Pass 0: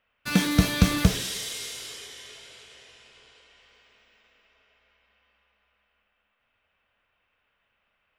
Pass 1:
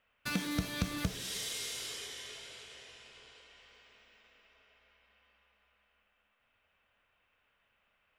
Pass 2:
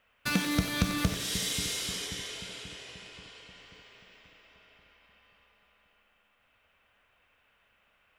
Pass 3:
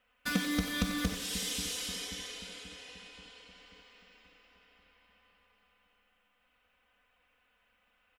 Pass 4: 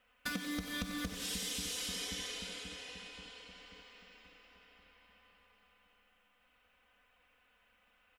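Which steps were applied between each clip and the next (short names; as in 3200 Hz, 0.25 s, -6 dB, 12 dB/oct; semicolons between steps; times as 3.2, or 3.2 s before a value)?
compressor 2.5:1, threshold -35 dBFS, peak gain reduction 15 dB; gain -1.5 dB
split-band echo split 400 Hz, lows 0.534 s, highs 92 ms, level -10.5 dB; gain +6 dB
comb 4 ms, depth 90%; gain -6 dB
compressor 10:1, threshold -37 dBFS, peak gain reduction 13 dB; gain +1.5 dB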